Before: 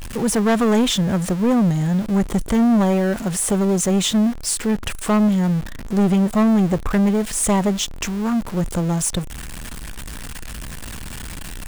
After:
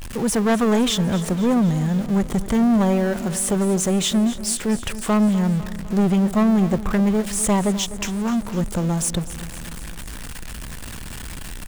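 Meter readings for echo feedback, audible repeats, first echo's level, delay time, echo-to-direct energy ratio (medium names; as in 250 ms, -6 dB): 59%, 5, -15.0 dB, 251 ms, -13.0 dB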